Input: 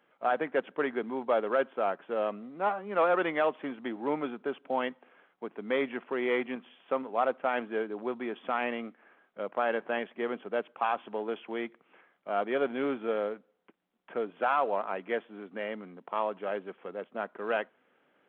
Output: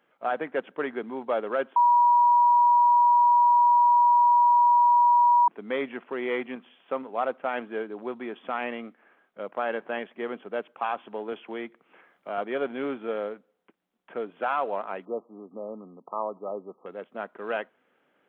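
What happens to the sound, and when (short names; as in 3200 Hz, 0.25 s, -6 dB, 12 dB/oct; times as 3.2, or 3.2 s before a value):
1.76–5.48 bleep 963 Hz -15.5 dBFS
11.32–12.38 three-band squash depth 40%
15.05–16.86 brick-wall FIR low-pass 1300 Hz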